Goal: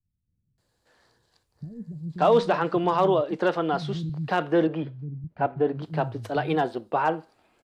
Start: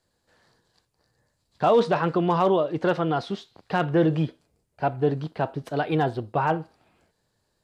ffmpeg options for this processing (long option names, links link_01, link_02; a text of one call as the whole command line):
ffmpeg -i in.wav -filter_complex "[0:a]asettb=1/sr,asplit=3[link_01][link_02][link_03];[link_01]atrim=end=4.094[link_04];[link_02]atrim=start=4.09:end=5.24,asetpts=PTS-STARTPTS,afade=type=in:duration=0.004:curve=qsin,afade=type=out:start_time=1.146:duration=0.004:curve=qsin,highpass=130,lowpass=2400[link_05];[link_03]atrim=start=5.236[link_06];[link_04][link_05]acrossfade=duration=0.004:curve1=hsin:curve2=qsin[link_07];[link_07][link_06]acrossfade=duration=0.004:curve1=qsin:curve2=hsin,acrossover=split=180[link_08][link_09];[link_09]adelay=580[link_10];[link_08][link_10]amix=inputs=2:normalize=0" out.wav